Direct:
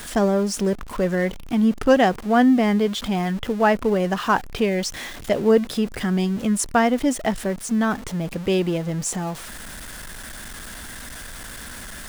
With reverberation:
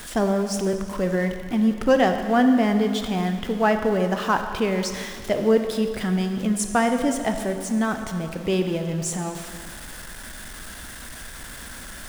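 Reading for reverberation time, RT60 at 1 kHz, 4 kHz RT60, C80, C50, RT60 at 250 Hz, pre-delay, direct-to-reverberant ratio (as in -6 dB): 2.1 s, 2.1 s, 1.9 s, 8.5 dB, 7.5 dB, 1.9 s, 22 ms, 6.0 dB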